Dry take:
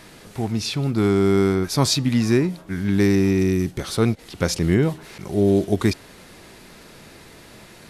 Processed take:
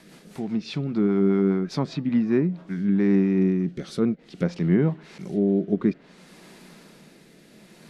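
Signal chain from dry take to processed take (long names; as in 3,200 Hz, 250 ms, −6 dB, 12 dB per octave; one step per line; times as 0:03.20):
rotating-speaker cabinet horn 5 Hz, later 0.6 Hz, at 0:02.19
treble cut that deepens with the level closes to 1,900 Hz, closed at −18.5 dBFS
low shelf with overshoot 130 Hz −9 dB, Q 3
level −4 dB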